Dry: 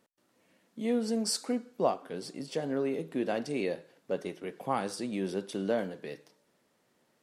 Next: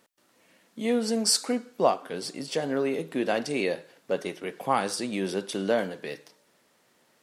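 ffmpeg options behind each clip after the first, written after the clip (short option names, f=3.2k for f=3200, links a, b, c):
-af "tiltshelf=f=630:g=-3.5,volume=5.5dB"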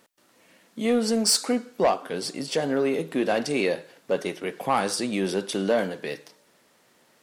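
-af "asoftclip=type=tanh:threshold=-16.5dB,volume=4dB"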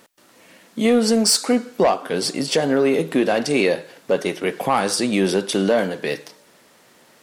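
-af "alimiter=limit=-17.5dB:level=0:latency=1:release=349,volume=8.5dB"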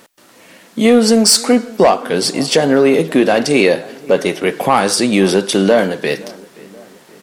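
-filter_complex "[0:a]asplit=2[a][b];[b]adelay=524,lowpass=f=1.9k:p=1,volume=-21.5dB,asplit=2[c][d];[d]adelay=524,lowpass=f=1.9k:p=1,volume=0.52,asplit=2[e][f];[f]adelay=524,lowpass=f=1.9k:p=1,volume=0.52,asplit=2[g][h];[h]adelay=524,lowpass=f=1.9k:p=1,volume=0.52[i];[a][c][e][g][i]amix=inputs=5:normalize=0,volume=6.5dB"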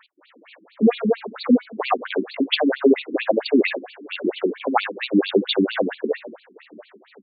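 -af "afftfilt=real='re*between(b*sr/1024,250*pow(3300/250,0.5+0.5*sin(2*PI*4.4*pts/sr))/1.41,250*pow(3300/250,0.5+0.5*sin(2*PI*4.4*pts/sr))*1.41)':imag='im*between(b*sr/1024,250*pow(3300/250,0.5+0.5*sin(2*PI*4.4*pts/sr))/1.41,250*pow(3300/250,0.5+0.5*sin(2*PI*4.4*pts/sr))*1.41)':win_size=1024:overlap=0.75"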